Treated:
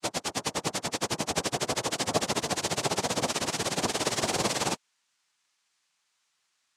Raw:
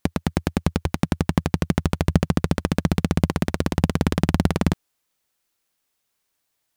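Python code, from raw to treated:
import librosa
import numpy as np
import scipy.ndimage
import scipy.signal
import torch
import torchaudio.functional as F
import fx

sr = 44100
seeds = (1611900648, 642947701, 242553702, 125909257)

y = fx.pitch_bins(x, sr, semitones=6.0)
y = fx.tilt_eq(y, sr, slope=3.5)
y = fx.noise_vocoder(y, sr, seeds[0], bands=2)
y = F.gain(torch.from_numpy(y), 2.5).numpy()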